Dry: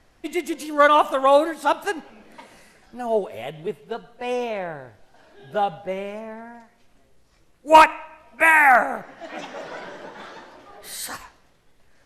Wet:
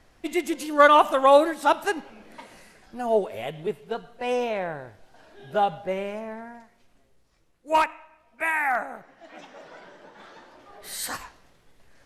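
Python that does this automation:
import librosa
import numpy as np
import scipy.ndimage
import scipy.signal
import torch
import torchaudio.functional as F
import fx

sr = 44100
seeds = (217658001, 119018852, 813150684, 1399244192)

y = fx.gain(x, sr, db=fx.line((6.34, 0.0), (7.85, -10.5), (10.01, -10.5), (11.12, 1.0)))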